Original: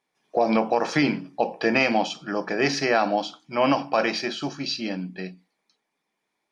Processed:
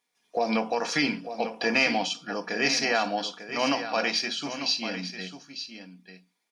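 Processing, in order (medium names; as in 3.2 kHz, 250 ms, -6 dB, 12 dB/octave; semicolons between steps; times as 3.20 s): treble shelf 2.1 kHz +12 dB; comb 4.2 ms, depth 41%; delay 897 ms -10.5 dB; trim -7.5 dB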